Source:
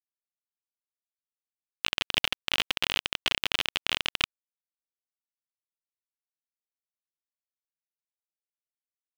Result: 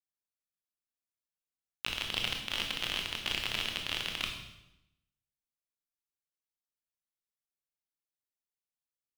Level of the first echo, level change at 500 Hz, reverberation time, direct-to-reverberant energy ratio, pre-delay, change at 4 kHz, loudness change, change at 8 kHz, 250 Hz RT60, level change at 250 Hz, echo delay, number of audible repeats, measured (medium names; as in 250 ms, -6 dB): no echo, -5.0 dB, 0.90 s, 2.0 dB, 19 ms, -5.0 dB, -5.0 dB, -3.5 dB, 1.0 s, -2.5 dB, no echo, no echo